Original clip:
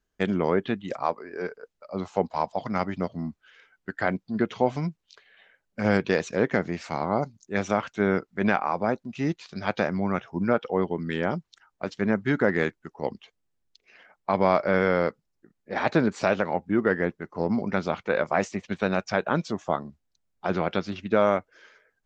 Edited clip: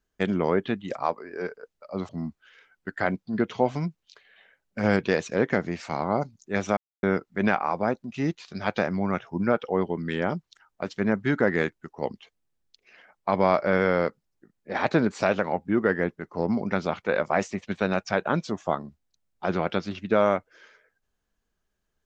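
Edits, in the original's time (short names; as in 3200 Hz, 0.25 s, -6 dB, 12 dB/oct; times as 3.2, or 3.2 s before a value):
2.09–3.1 cut
7.78–8.04 mute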